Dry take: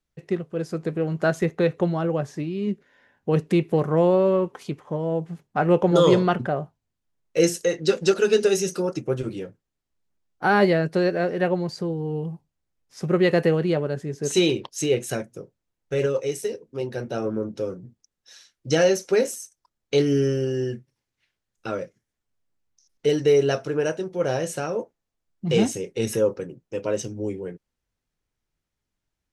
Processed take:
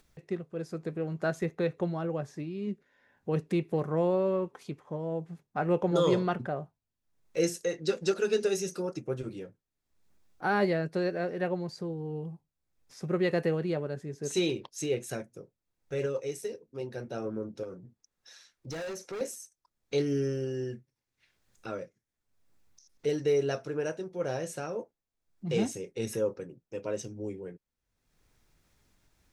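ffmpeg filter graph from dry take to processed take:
-filter_complex "[0:a]asettb=1/sr,asplit=3[a][b][c];[a]atrim=end=17.634[d];[b]atrim=start=17.63:end=19.21,asetpts=PTS-STARTPTS,afade=t=in:d=0.004:c=qsin,afade=t=out:st=1.576:d=0.004:c=qsin,equalizer=f=1.1k:w=0.5:g=4.5,asoftclip=type=hard:threshold=-19.5dB,acompressor=threshold=-28dB:ratio=6:attack=3.2:release=140:knee=1:detection=peak[e];[c]atrim=start=19.206[f];[d][e]acrossfade=d=0.004:c1=hsin:c2=qsin[g];[g][f]acrossfade=d=0.004:c1=qsin:c2=hsin,bandreject=f=3k:w=17,acompressor=mode=upward:threshold=-40dB:ratio=2.5,volume=-8.5dB"

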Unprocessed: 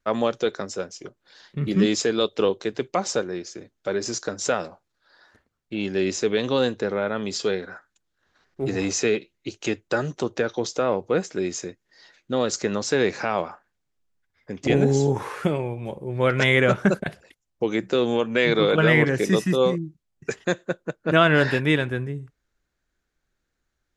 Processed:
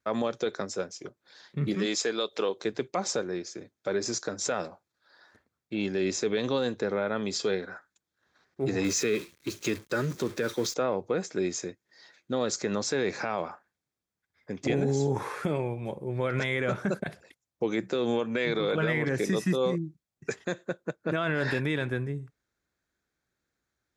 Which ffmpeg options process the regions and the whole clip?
-filter_complex "[0:a]asettb=1/sr,asplit=3[a][b][c];[a]atrim=end=1.744[d];[b]atrim=start=1.74:end=2.61,asetpts=PTS-STARTPTS,afade=t=in:d=0.004:c=qsin,afade=t=out:st=0.866:d=0.004:c=qsin,highpass=f=560:p=1,acompressor=mode=upward:threshold=-28dB:ratio=2.5:attack=3.2:release=140:knee=2.83:detection=peak[e];[c]atrim=start=2.606[f];[d][e]acrossfade=d=0.004:c1=hsin:c2=qsin[g];[g][f]acrossfade=d=0.004:c1=qsin:c2=hsin,asettb=1/sr,asplit=3[h][i][j];[h]atrim=end=8.844[k];[i]atrim=start=8.84:end=10.74,asetpts=PTS-STARTPTS,afade=t=in:d=0.004:c=qsin,afade=t=out:st=1.896:d=0.004:c=qsin,aeval=exprs='val(0)+0.5*0.0237*sgn(val(0))':c=same,agate=range=-33dB:threshold=-31dB:ratio=3:release=100:detection=peak,equalizer=f=750:t=o:w=0.51:g=-11[l];[j]atrim=start=10.736[m];[k][l]acrossfade=d=0.004:c1=hsin:c2=qsin[n];[n][m]acrossfade=d=0.004:c1=qsin:c2=hsin,highpass=80,bandreject=f=2.9k:w=10,alimiter=limit=-15.5dB:level=0:latency=1:release=58,volume=-2.5dB"

